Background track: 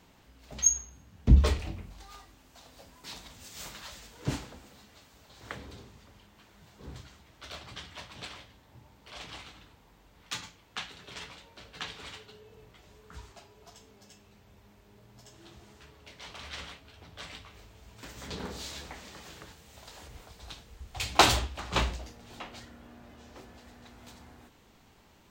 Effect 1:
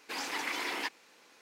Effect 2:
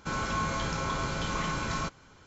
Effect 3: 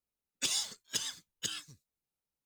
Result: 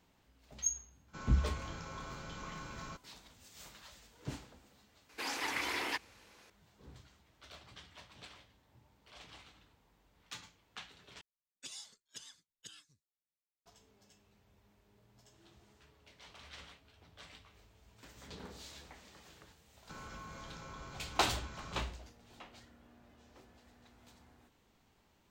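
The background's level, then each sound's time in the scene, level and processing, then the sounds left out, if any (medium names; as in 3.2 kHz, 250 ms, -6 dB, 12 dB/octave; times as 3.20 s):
background track -10.5 dB
1.08 s: add 2 -14.5 dB
5.09 s: add 1 -1.5 dB
11.21 s: replace with 3 -15.5 dB + low-pass 11 kHz
19.84 s: add 2 -10.5 dB + compression 4:1, threshold -36 dBFS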